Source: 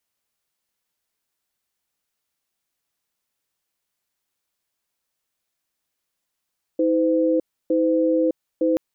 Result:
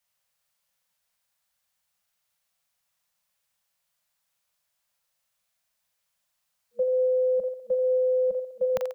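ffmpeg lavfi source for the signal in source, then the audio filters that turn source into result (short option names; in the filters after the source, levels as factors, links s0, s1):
-f lavfi -i "aevalsrc='0.112*(sin(2*PI*320*t)+sin(2*PI*510*t))*clip(min(mod(t,0.91),0.61-mod(t,0.91))/0.005,0,1)':d=1.98:s=44100"
-filter_complex "[0:a]afftfilt=real='re*(1-between(b*sr/4096,220,480))':imag='im*(1-between(b*sr/4096,220,480))':win_size=4096:overlap=0.75,acrossover=split=130|390[s0][s1][s2];[s2]aecho=1:1:40|86|138.9|199.7|269.7:0.631|0.398|0.251|0.158|0.1[s3];[s0][s1][s3]amix=inputs=3:normalize=0"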